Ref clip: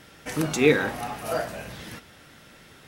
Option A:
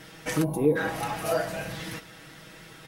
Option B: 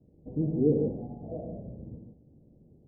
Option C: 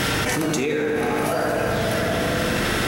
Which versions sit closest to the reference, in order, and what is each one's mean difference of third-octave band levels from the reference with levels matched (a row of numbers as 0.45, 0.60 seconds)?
A, C, B; 5.0, 12.5, 16.5 decibels